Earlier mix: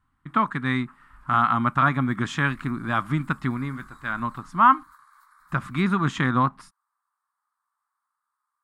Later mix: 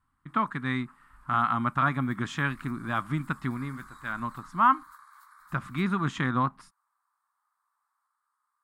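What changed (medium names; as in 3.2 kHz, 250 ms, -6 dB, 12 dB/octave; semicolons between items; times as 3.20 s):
speech -5.0 dB; second sound +3.5 dB; reverb: on, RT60 2.0 s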